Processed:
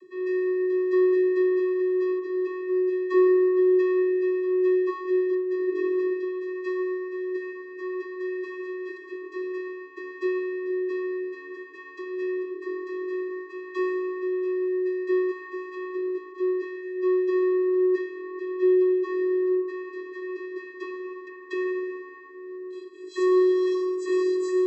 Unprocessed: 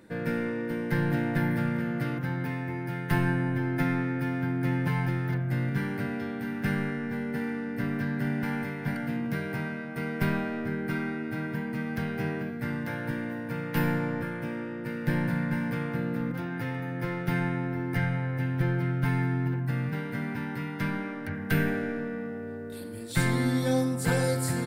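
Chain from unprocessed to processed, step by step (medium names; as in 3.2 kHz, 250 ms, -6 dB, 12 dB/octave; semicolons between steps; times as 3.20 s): 5.66–6.11 s: resonant low shelf 210 Hz -11 dB, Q 3; vocoder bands 32, square 368 Hz; trim +4 dB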